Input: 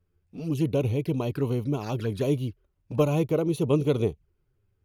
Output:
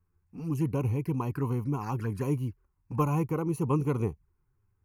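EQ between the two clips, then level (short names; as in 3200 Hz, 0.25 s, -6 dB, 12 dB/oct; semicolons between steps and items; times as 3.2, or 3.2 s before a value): band shelf 780 Hz +9.5 dB 1.2 oct; fixed phaser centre 1500 Hz, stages 4; -1.0 dB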